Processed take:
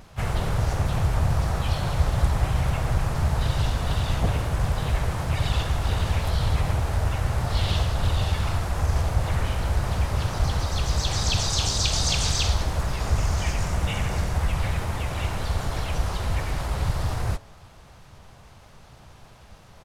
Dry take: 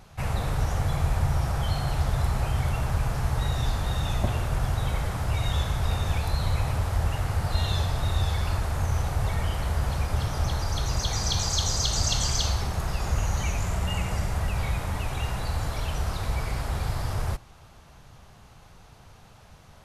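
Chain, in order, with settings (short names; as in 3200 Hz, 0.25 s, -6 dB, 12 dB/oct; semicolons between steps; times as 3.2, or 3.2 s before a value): de-hum 276.7 Hz, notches 4; harmoniser -4 st -2 dB, +4 st -7 dB; Doppler distortion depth 0.45 ms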